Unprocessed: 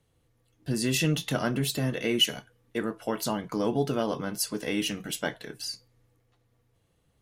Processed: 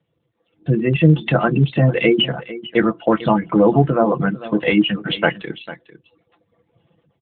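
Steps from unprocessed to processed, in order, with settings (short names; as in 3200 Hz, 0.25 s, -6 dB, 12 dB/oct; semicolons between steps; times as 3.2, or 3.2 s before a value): notches 60/120/180/240/300/360 Hz; treble ducked by the level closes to 1600 Hz, closed at -23.5 dBFS; reverb removal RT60 0.86 s; spectral gate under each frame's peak -25 dB strong; 1.56–4.31 low shelf 260 Hz +2 dB; comb 5.9 ms, depth 48%; dynamic EQ 2500 Hz, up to +4 dB, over -47 dBFS, Q 1.6; AGC gain up to 12 dB; echo 0.448 s -16 dB; gain +2.5 dB; AMR-NB 12.2 kbps 8000 Hz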